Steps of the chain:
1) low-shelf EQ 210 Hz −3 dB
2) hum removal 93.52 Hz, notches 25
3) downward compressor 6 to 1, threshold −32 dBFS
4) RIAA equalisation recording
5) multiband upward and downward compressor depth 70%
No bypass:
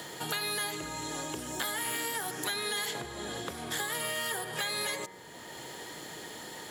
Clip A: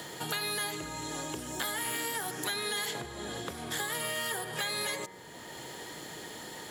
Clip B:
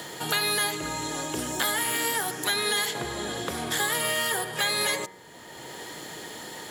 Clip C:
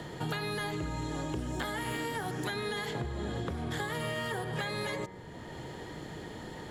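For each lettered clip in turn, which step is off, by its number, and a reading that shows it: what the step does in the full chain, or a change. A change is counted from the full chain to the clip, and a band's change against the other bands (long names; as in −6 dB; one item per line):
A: 1, 125 Hz band +1.5 dB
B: 3, average gain reduction 4.5 dB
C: 4, 8 kHz band −13.5 dB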